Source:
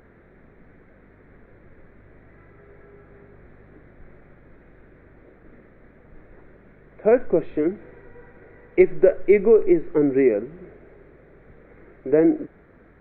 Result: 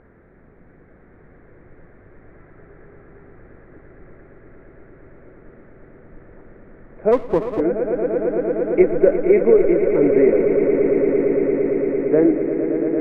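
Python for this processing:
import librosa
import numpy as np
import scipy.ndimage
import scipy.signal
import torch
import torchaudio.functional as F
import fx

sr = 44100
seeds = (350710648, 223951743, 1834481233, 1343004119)

y = scipy.signal.sosfilt(scipy.signal.butter(2, 1900.0, 'lowpass', fs=sr, output='sos'), x)
y = fx.echo_swell(y, sr, ms=114, loudest=8, wet_db=-10.0)
y = fx.running_max(y, sr, window=17, at=(7.11, 7.59), fade=0.02)
y = y * 10.0 ** (1.0 / 20.0)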